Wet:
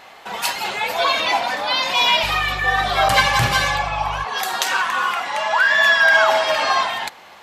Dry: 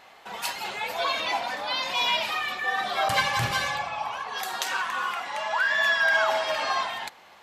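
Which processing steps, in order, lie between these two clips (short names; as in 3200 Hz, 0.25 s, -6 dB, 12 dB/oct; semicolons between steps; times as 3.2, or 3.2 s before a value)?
2.22–4.23 buzz 50 Hz, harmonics 3, -40 dBFS -5 dB/oct; gain +8.5 dB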